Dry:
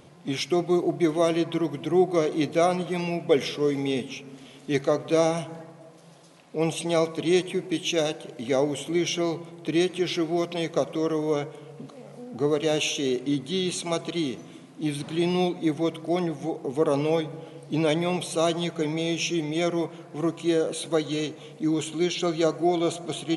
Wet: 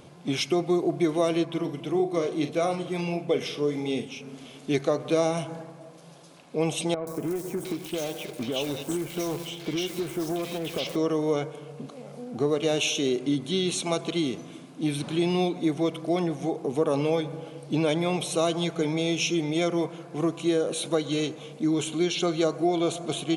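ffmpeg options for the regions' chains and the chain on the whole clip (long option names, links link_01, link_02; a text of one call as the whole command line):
ffmpeg -i in.wav -filter_complex "[0:a]asettb=1/sr,asplit=3[link_01][link_02][link_03];[link_01]atrim=end=1.454[link_04];[link_02]atrim=start=1.45:end=4.21,asetpts=PTS-STARTPTS,afade=type=in:duration=0.004:curve=qsin,afade=type=out:start_time=2.756:duration=0.004:curve=qsin,asplit=2[link_05][link_06];[link_06]adelay=41,volume=-10dB[link_07];[link_05][link_07]amix=inputs=2:normalize=0,atrim=end_sample=121716,flanger=delay=0.3:depth=6.3:regen=-73:speed=1.6:shape=sinusoidal[link_08];[link_03]atrim=start=4.206[link_09];[link_04][link_08]acrossfade=duration=0.004:curve1=hsin:curve2=qsin[link_10];[link_10][link_09]acrossfade=duration=0.004:curve1=qsin:curve2=hsin,asettb=1/sr,asplit=3[link_11][link_12][link_13];[link_11]atrim=end=6.944[link_14];[link_12]atrim=start=6.94:end=10.96,asetpts=PTS-STARTPTS,afade=type=in:duration=0.004:curve=qsin,afade=type=out:start_time=4.016:duration=0.004:curve=qsin,acompressor=threshold=-27dB:ratio=16:attack=3.2:release=140:knee=1:detection=peak,acrusher=bits=2:mode=log:mix=0:aa=0.000001,acrossover=split=1800|5900[link_15][link_16][link_17];[link_17]adelay=130[link_18];[link_16]adelay=710[link_19];[link_15][link_19][link_18]amix=inputs=3:normalize=0,atrim=end_sample=177282[link_20];[link_13]atrim=start=10.956[link_21];[link_14][link_20]acrossfade=duration=0.004:curve1=hsin:curve2=qsin[link_22];[link_22][link_21]acrossfade=duration=0.004:curve1=qsin:curve2=hsin,bandreject=frequency=1900:width=13,acompressor=threshold=-24dB:ratio=2,volume=2dB" out.wav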